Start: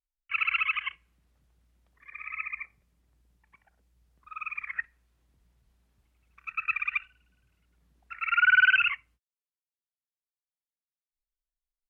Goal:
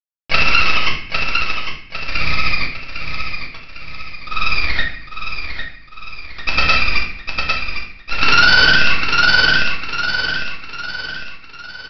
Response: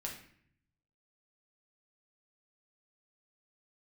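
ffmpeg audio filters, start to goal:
-filter_complex "[0:a]acrossover=split=300|1100[s0][s1][s2];[s2]acompressor=threshold=0.0158:ratio=6[s3];[s0][s1][s3]amix=inputs=3:normalize=0,aexciter=amount=3.6:drive=3.8:freq=2900,aresample=11025,acrusher=bits=5:dc=4:mix=0:aa=0.000001,aresample=44100,aecho=1:1:803|1606|2409|3212|4015:0.398|0.179|0.0806|0.0363|0.0163[s4];[1:a]atrim=start_sample=2205[s5];[s4][s5]afir=irnorm=-1:irlink=0,alimiter=level_in=18.8:limit=0.891:release=50:level=0:latency=1,volume=0.891"

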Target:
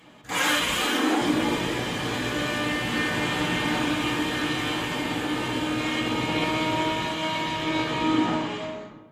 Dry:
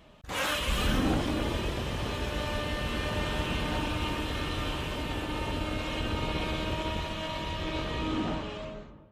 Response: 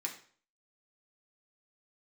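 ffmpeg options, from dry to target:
-filter_complex "[0:a]asettb=1/sr,asplit=3[s0][s1][s2];[s0]atrim=end=0.734[s3];[s1]atrim=start=0.73:end=1.21,asetpts=PTS-STARTPTS,afade=t=in:d=0.004:c=qsin,afade=t=out:st=0.476:d=0.004:c=qsin,highpass=f=280:w=0.5412,highpass=f=280:w=1.3066[s4];[s2]atrim=start=1.206[s5];[s3][s4]acrossfade=d=0.004:c1=hsin:c2=qsin[s6];[s6][s5]acrossfade=d=0.004:c1=qsin:c2=hsin[s7];[1:a]atrim=start_sample=2205,asetrate=41013,aresample=44100[s8];[s7][s8]afir=irnorm=-1:irlink=0,volume=2.24"

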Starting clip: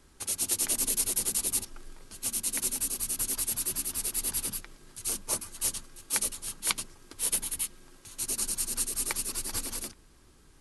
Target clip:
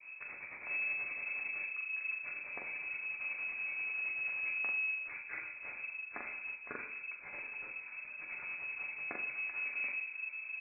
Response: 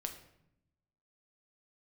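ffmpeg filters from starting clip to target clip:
-filter_complex "[0:a]aecho=1:1:11|43:0.355|0.631,asplit=2[s0][s1];[s1]adynamicsmooth=sensitivity=6.5:basefreq=740,volume=1.12[s2];[s0][s2]amix=inputs=2:normalize=0,adynamicequalizer=threshold=0.00224:dfrequency=1000:dqfactor=1.7:tfrequency=1000:tqfactor=1.7:attack=5:release=100:ratio=0.375:range=2.5:mode=cutabove:tftype=bell,areverse,acompressor=threshold=0.0126:ratio=6,areverse[s3];[1:a]atrim=start_sample=2205,asetrate=39690,aresample=44100[s4];[s3][s4]afir=irnorm=-1:irlink=0,lowpass=f=2200:t=q:w=0.5098,lowpass=f=2200:t=q:w=0.6013,lowpass=f=2200:t=q:w=0.9,lowpass=f=2200:t=q:w=2.563,afreqshift=-2600,volume=1.33"

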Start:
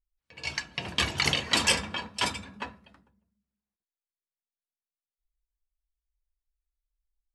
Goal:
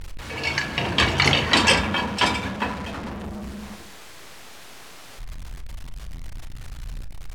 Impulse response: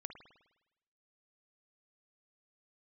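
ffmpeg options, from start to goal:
-filter_complex "[0:a]aeval=exprs='val(0)+0.5*0.0188*sgn(val(0))':c=same,aemphasis=mode=reproduction:type=50fm,bandreject=f=50:t=h:w=6,bandreject=f=100:t=h:w=6,bandreject=f=150:t=h:w=6,bandreject=f=200:t=h:w=6,asplit=2[s0][s1];[s1]highshelf=f=3700:g=-8.5[s2];[1:a]atrim=start_sample=2205,adelay=35[s3];[s2][s3]afir=irnorm=-1:irlink=0,volume=0.75[s4];[s0][s4]amix=inputs=2:normalize=0,volume=2.51"

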